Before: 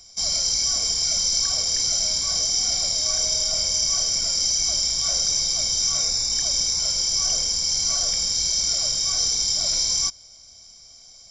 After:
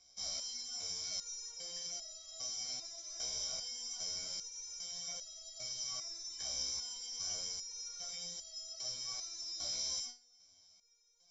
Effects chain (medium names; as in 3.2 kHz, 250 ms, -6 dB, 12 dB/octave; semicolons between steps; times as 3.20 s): low-pass 6.5 kHz 24 dB/octave; bass shelf 110 Hz -9.5 dB; band-stop 4.7 kHz, Q 8.9; resonator arpeggio 2.5 Hz 65–650 Hz; trim -6.5 dB